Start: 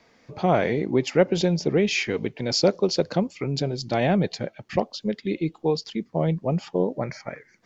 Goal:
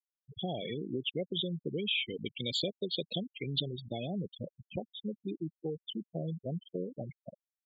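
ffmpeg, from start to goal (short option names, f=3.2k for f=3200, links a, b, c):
-af "firequalizer=gain_entry='entry(140,0);entry(680,-4);entry(990,-6);entry(1600,-6);entry(3400,15);entry(5400,-30);entry(7900,5)':delay=0.05:min_phase=1,acompressor=threshold=-26dB:ratio=3,asetnsamples=n=441:p=0,asendcmd='2.26 highshelf g 11.5;3.8 highshelf g -2',highshelf=f=2.3k:g=4.5,afftfilt=real='re*gte(hypot(re,im),0.0794)':imag='im*gte(hypot(re,im),0.0794)':win_size=1024:overlap=0.75,volume=-7.5dB"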